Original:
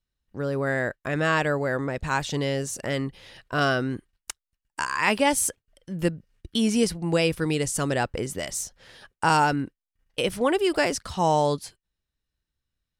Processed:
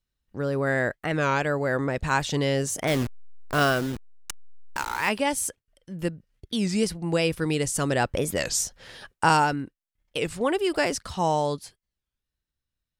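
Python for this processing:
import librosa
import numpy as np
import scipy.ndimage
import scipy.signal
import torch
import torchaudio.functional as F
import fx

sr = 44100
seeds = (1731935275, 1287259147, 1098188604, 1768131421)

y = fx.delta_hold(x, sr, step_db=-30.5, at=(2.89, 5.09))
y = fx.rider(y, sr, range_db=10, speed_s=0.5)
y = fx.record_warp(y, sr, rpm=33.33, depth_cents=250.0)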